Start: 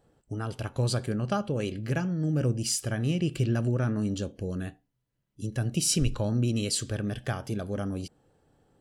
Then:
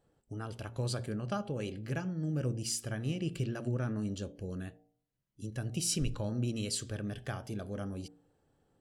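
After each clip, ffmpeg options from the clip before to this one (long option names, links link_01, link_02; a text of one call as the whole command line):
ffmpeg -i in.wav -af "bandreject=frequency=57.95:width_type=h:width=4,bandreject=frequency=115.9:width_type=h:width=4,bandreject=frequency=173.85:width_type=h:width=4,bandreject=frequency=231.8:width_type=h:width=4,bandreject=frequency=289.75:width_type=h:width=4,bandreject=frequency=347.7:width_type=h:width=4,bandreject=frequency=405.65:width_type=h:width=4,bandreject=frequency=463.6:width_type=h:width=4,bandreject=frequency=521.55:width_type=h:width=4,bandreject=frequency=579.5:width_type=h:width=4,bandreject=frequency=637.45:width_type=h:width=4,bandreject=frequency=695.4:width_type=h:width=4,bandreject=frequency=753.35:width_type=h:width=4,bandreject=frequency=811.3:width_type=h:width=4,bandreject=frequency=869.25:width_type=h:width=4,volume=-6.5dB" out.wav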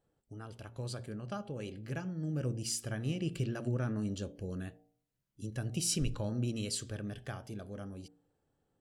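ffmpeg -i in.wav -af "dynaudnorm=framelen=250:gausssize=17:maxgain=6dB,volume=-6dB" out.wav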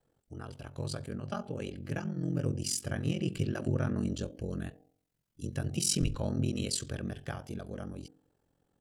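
ffmpeg -i in.wav -af "aeval=exprs='val(0)*sin(2*PI*22*n/s)':channel_layout=same,volume=6dB" out.wav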